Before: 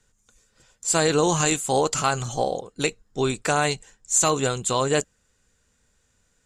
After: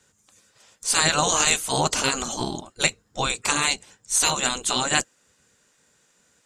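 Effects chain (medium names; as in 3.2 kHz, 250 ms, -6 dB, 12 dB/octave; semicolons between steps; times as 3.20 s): spectral gate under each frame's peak -10 dB weak; trim +6.5 dB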